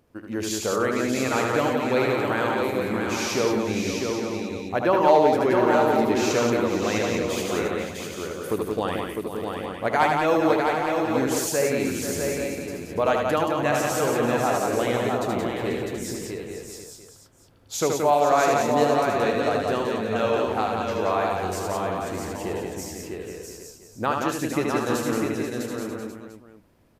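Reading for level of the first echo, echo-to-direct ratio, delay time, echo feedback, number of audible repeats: -4.5 dB, 2.0 dB, 76 ms, no steady repeat, 13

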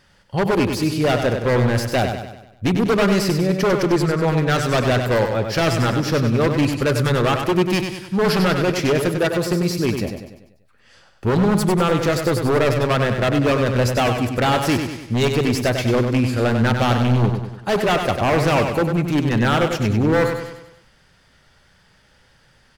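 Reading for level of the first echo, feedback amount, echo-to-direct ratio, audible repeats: -6.5 dB, 49%, -5.5 dB, 5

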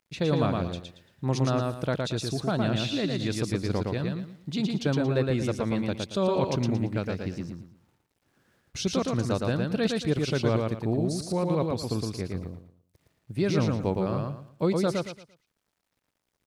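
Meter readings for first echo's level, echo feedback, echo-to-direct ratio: -3.0 dB, 28%, -2.5 dB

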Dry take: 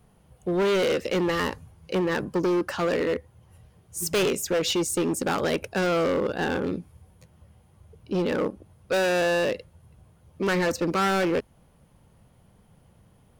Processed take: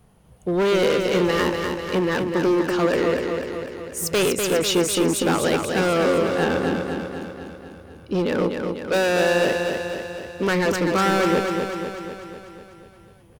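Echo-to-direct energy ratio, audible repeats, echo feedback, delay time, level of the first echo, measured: -3.0 dB, 7, 60%, 0.247 s, -5.0 dB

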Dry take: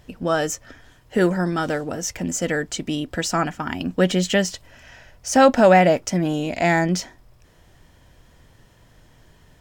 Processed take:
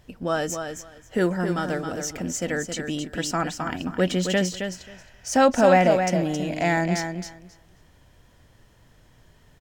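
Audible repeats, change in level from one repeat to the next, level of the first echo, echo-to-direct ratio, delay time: 2, -16.0 dB, -7.0 dB, -7.0 dB, 0.268 s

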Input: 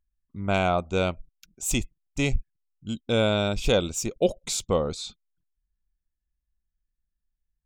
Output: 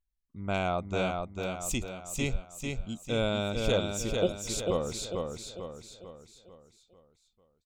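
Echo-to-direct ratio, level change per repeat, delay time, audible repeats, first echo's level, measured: -3.0 dB, -6.5 dB, 0.446 s, 5, -4.0 dB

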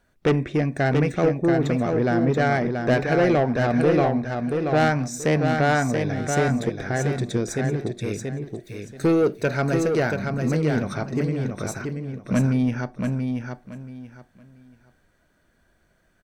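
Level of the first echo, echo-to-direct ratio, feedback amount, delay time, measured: -5.0 dB, -4.5 dB, 24%, 0.681 s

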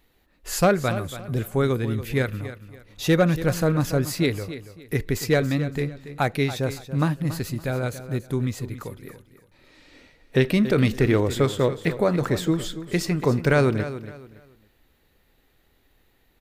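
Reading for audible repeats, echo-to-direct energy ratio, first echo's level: 2, -12.5 dB, -13.0 dB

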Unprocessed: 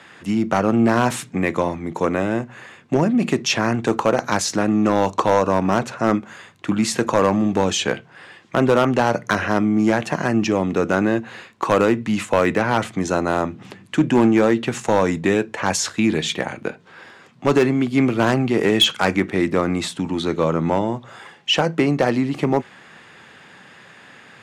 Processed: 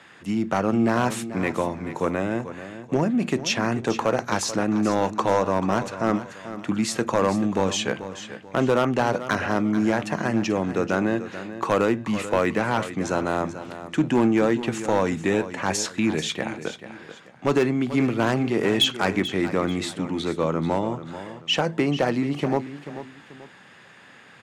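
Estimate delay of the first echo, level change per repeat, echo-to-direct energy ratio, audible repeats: 0.437 s, -9.0 dB, -12.0 dB, 2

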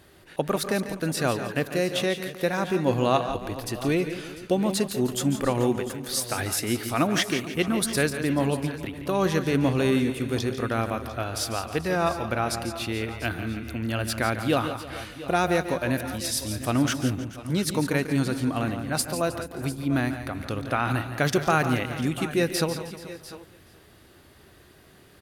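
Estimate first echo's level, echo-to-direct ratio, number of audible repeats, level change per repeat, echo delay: -12.0 dB, -7.5 dB, 5, no steady repeat, 0.144 s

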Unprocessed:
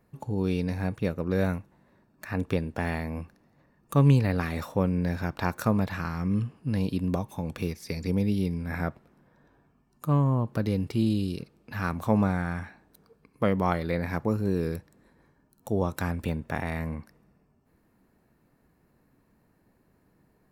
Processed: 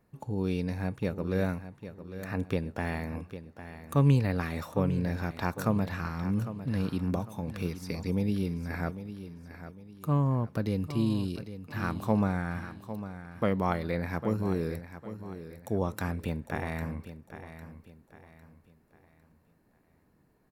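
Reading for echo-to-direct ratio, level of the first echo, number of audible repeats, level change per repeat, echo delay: -11.5 dB, -12.0 dB, 3, -9.0 dB, 0.803 s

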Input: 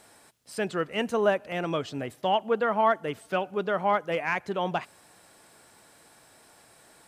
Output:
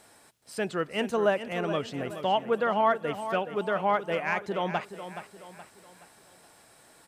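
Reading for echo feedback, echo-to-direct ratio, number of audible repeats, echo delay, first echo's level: 42%, -10.0 dB, 4, 0.423 s, -11.0 dB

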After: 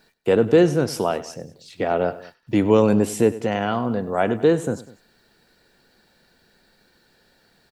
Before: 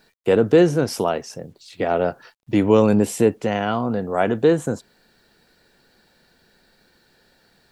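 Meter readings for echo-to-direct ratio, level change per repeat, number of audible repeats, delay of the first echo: -15.5 dB, -4.5 dB, 2, 99 ms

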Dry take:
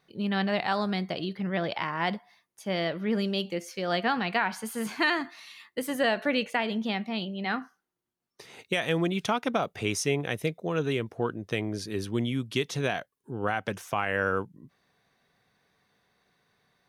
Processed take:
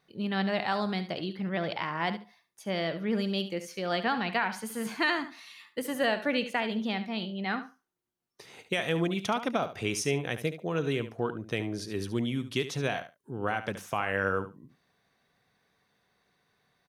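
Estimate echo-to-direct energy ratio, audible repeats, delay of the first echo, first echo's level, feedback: -12.0 dB, 2, 72 ms, -12.0 dB, 15%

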